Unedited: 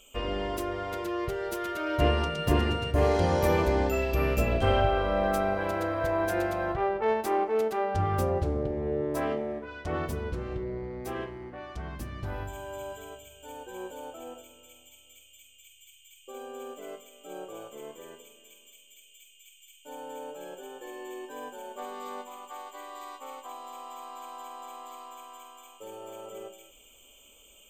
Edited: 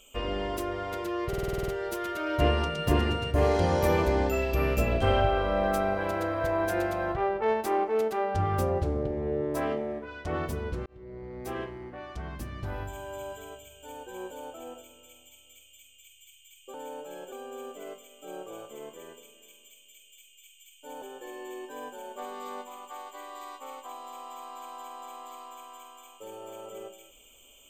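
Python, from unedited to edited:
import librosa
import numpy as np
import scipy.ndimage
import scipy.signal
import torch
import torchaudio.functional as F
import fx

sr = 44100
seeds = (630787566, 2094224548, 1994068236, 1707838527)

y = fx.edit(x, sr, fx.stutter(start_s=1.28, slice_s=0.05, count=9),
    fx.fade_in_span(start_s=10.46, length_s=0.65),
    fx.move(start_s=20.04, length_s=0.58, to_s=16.34), tone=tone)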